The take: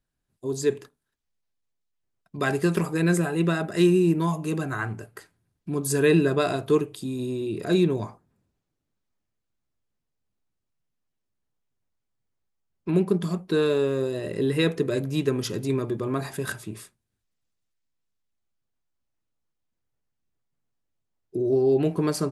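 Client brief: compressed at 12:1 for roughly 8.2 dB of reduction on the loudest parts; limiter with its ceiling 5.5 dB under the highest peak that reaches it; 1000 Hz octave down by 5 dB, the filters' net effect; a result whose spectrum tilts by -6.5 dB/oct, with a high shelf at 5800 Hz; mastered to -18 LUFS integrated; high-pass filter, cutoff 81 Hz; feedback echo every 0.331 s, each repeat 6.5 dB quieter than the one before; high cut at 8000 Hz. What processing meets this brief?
HPF 81 Hz; LPF 8000 Hz; bell 1000 Hz -6.5 dB; high shelf 5800 Hz -8.5 dB; compressor 12:1, threshold -24 dBFS; limiter -21.5 dBFS; feedback echo 0.331 s, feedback 47%, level -6.5 dB; gain +13 dB

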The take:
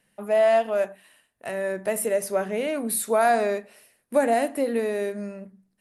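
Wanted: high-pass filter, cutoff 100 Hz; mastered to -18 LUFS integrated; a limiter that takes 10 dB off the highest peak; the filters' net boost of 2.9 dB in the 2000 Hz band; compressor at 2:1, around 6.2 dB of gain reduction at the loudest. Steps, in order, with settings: HPF 100 Hz; bell 2000 Hz +3.5 dB; compressor 2:1, threshold -27 dBFS; gain +15.5 dB; limiter -9 dBFS

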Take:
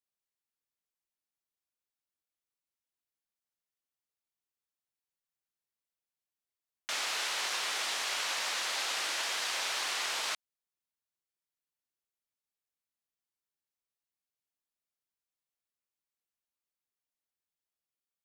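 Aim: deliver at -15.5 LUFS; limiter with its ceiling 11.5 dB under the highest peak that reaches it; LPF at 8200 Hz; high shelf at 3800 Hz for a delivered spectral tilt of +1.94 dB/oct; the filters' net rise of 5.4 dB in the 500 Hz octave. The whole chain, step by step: LPF 8200 Hz; bell 500 Hz +7 dB; high shelf 3800 Hz -4.5 dB; gain +25.5 dB; limiter -8 dBFS

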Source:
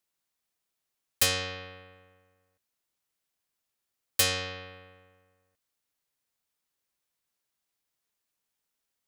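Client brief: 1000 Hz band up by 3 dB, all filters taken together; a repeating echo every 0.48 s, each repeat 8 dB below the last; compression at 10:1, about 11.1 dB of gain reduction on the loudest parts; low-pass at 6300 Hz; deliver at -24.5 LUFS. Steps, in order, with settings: LPF 6300 Hz; bell 1000 Hz +4 dB; compressor 10:1, threshold -33 dBFS; feedback echo 0.48 s, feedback 40%, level -8 dB; gain +16 dB

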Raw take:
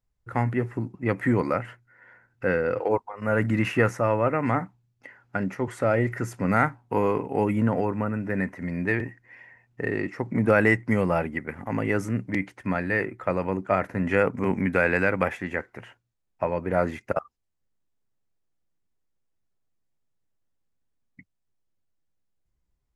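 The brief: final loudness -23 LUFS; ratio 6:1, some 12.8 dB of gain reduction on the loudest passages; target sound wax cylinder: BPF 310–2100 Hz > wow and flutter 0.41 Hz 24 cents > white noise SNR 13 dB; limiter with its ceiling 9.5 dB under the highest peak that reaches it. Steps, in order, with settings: compressor 6:1, threshold -29 dBFS; limiter -22.5 dBFS; BPF 310–2100 Hz; wow and flutter 0.41 Hz 24 cents; white noise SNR 13 dB; gain +16 dB

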